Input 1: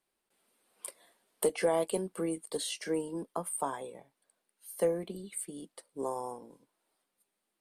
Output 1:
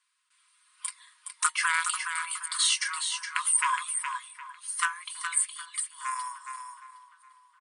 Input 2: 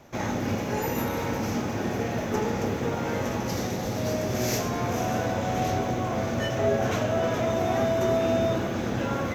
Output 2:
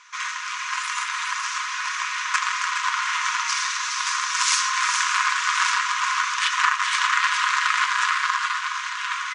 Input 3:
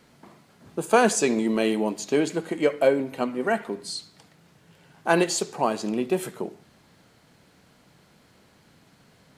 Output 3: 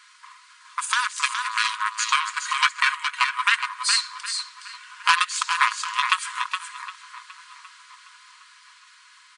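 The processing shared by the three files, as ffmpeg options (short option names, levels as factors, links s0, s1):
-filter_complex "[0:a]aeval=exprs='0.596*(cos(1*acos(clip(val(0)/0.596,-1,1)))-cos(1*PI/2))+0.0376*(cos(2*acos(clip(val(0)/0.596,-1,1)))-cos(2*PI/2))+0.0422*(cos(4*acos(clip(val(0)/0.596,-1,1)))-cos(4*PI/2))+0.0106*(cos(5*acos(clip(val(0)/0.596,-1,1)))-cos(5*PI/2))+0.119*(cos(7*acos(clip(val(0)/0.596,-1,1)))-cos(7*PI/2))':c=same,acompressor=threshold=0.0178:ratio=6,afftfilt=real='re*between(b*sr/4096,930,10000)':imag='im*between(b*sr/4096,930,10000)':win_size=4096:overlap=0.75,aecho=1:1:4.8:0.44,dynaudnorm=f=430:g=9:m=1.58,asplit=2[s0][s1];[s1]adelay=764,lowpass=f=2600:p=1,volume=0.158,asplit=2[s2][s3];[s3]adelay=764,lowpass=f=2600:p=1,volume=0.44,asplit=2[s4][s5];[s5]adelay=764,lowpass=f=2600:p=1,volume=0.44,asplit=2[s6][s7];[s7]adelay=764,lowpass=f=2600:p=1,volume=0.44[s8];[s2][s4][s6][s8]amix=inputs=4:normalize=0[s9];[s0][s9]amix=inputs=2:normalize=0,apsyclip=18.8,asplit=2[s10][s11];[s11]aecho=0:1:417:0.447[s12];[s10][s12]amix=inputs=2:normalize=0,volume=0.501"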